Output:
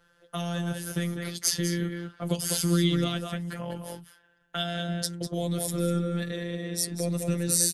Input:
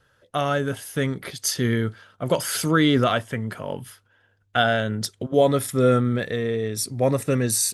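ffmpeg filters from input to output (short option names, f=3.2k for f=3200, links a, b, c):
-filter_complex "[0:a]asplit=2[a][b];[b]adelay=198.3,volume=-7dB,highshelf=f=4k:g=-4.46[c];[a][c]amix=inputs=2:normalize=0,afftfilt=real='hypot(re,im)*cos(PI*b)':imag='0':win_size=1024:overlap=0.75,acrossover=split=290|3000[d][e][f];[e]acompressor=threshold=-38dB:ratio=6[g];[d][g][f]amix=inputs=3:normalize=0,volume=2dB"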